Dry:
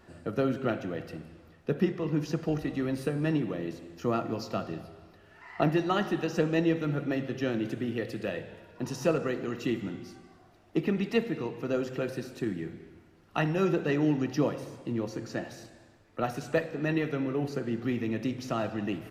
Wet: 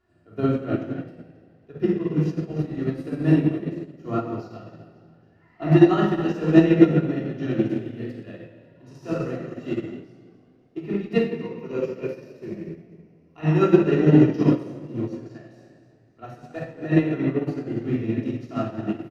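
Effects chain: 11.29–13.41 ripple EQ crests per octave 0.82, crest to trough 9 dB; harmonic-percussive split harmonic +8 dB; high shelf 8800 Hz -7 dB; frequency-shifting echo 0.27 s, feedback 45%, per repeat +50 Hz, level -12 dB; shoebox room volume 1700 m³, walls mixed, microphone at 3.2 m; upward expander 2.5:1, over -24 dBFS; gain +1 dB

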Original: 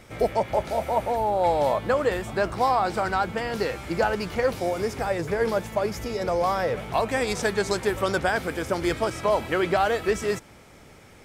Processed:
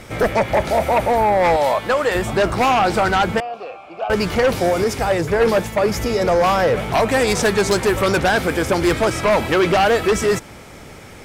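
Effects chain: 1.56–2.15 low shelf 480 Hz -11.5 dB; sine folder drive 7 dB, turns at -11 dBFS; 3.4–4.1 vowel filter a; 4.84–5.89 three-band expander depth 100%

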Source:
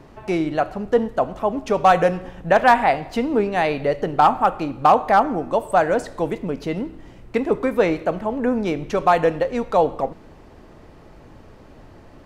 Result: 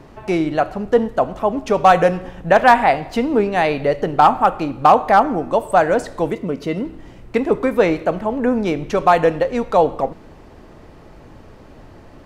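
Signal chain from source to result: 6.32–6.85 notch comb 830 Hz; gain +3 dB

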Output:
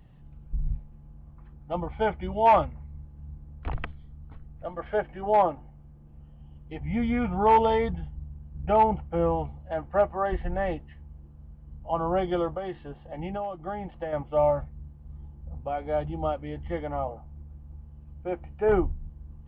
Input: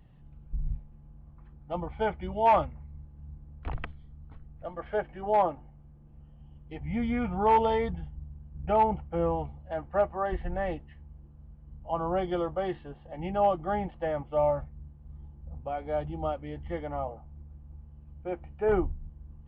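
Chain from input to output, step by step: 12.55–14.13 compressor 8:1, threshold -33 dBFS, peak gain reduction 13.5 dB; gain +3 dB

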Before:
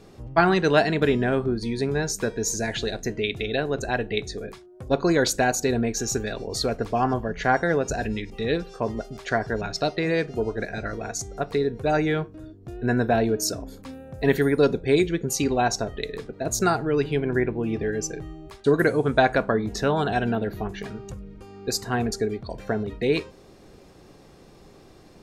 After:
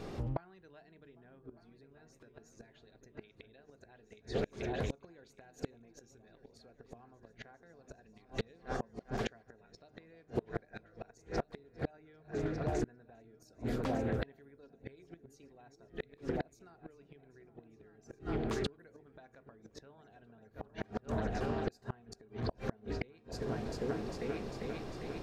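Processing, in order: bell 9800 Hz -8 dB 1.7 oct; notches 50/100/150/200/250/300/350/400/450 Hz; compressor 2:1, threshold -42 dBFS, peak gain reduction 15.5 dB; repeats that get brighter 0.4 s, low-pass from 200 Hz, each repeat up 2 oct, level -6 dB; flipped gate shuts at -28 dBFS, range -31 dB; Doppler distortion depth 0.35 ms; gain +6 dB

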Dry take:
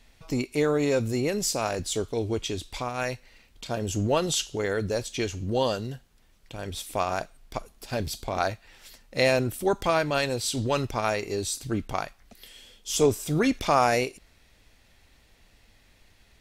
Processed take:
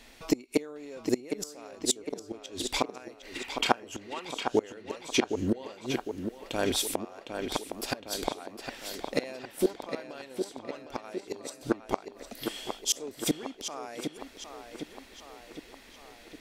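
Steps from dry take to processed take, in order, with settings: flipped gate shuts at -20 dBFS, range -28 dB; resonant low shelf 190 Hz -10 dB, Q 1.5; spectral gain 3.35–4.24, 720–3300 Hz +10 dB; on a send: tape echo 0.76 s, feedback 64%, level -6 dB, low-pass 4300 Hz; on the sum: gain +7.5 dB

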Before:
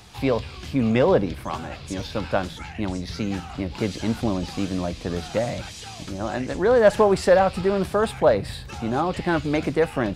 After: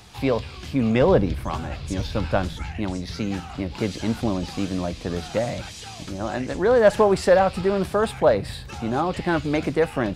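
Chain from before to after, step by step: 1.01–2.79 low shelf 110 Hz +11.5 dB

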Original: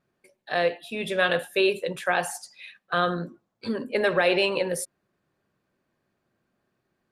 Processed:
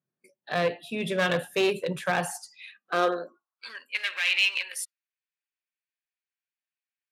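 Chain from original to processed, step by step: one-sided clip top -22.5 dBFS; spectral noise reduction 16 dB; high-pass sweep 140 Hz -> 2400 Hz, 2.6–3.86; gain -1.5 dB

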